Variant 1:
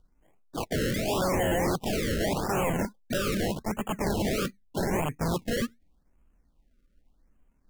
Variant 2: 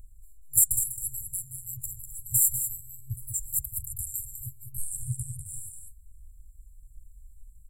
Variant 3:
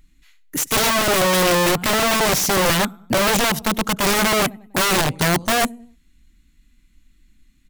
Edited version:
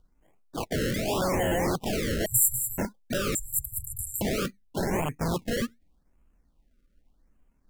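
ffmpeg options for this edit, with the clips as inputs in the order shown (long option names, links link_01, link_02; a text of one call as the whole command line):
ffmpeg -i take0.wav -i take1.wav -filter_complex "[1:a]asplit=2[link_01][link_02];[0:a]asplit=3[link_03][link_04][link_05];[link_03]atrim=end=2.262[link_06];[link_01]atrim=start=2.258:end=2.782[link_07];[link_04]atrim=start=2.778:end=3.352[link_08];[link_02]atrim=start=3.348:end=4.212[link_09];[link_05]atrim=start=4.208[link_10];[link_06][link_07]acrossfade=duration=0.004:curve1=hsin:curve2=hsin[link_11];[link_11][link_08]acrossfade=duration=0.004:curve1=hsin:curve2=hsin[link_12];[link_12][link_09]acrossfade=duration=0.004:curve1=hsin:curve2=hsin[link_13];[link_13][link_10]acrossfade=duration=0.004:curve1=hsin:curve2=hsin" out.wav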